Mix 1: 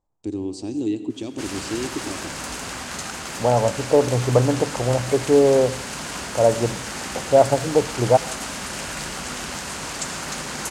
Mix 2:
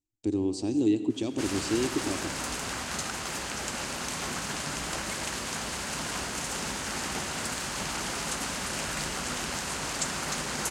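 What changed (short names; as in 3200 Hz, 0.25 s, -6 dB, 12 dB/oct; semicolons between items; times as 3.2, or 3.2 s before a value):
second voice: muted; background: send -8.0 dB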